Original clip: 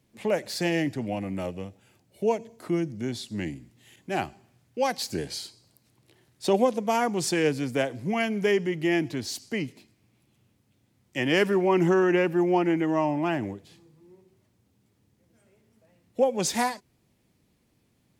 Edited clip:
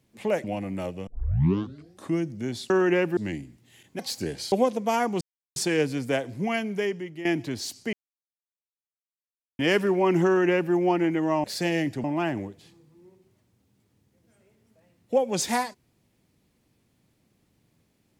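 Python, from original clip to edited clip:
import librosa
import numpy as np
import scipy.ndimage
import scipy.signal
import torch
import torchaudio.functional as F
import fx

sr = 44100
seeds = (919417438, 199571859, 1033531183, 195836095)

y = fx.edit(x, sr, fx.move(start_s=0.44, length_s=0.6, to_s=13.1),
    fx.tape_start(start_s=1.67, length_s=1.1),
    fx.cut(start_s=4.12, length_s=0.79),
    fx.cut(start_s=5.44, length_s=1.09),
    fx.insert_silence(at_s=7.22, length_s=0.35),
    fx.fade_out_to(start_s=8.1, length_s=0.81, floor_db=-13.0),
    fx.silence(start_s=9.59, length_s=1.66),
    fx.duplicate(start_s=11.92, length_s=0.47, to_s=3.3), tone=tone)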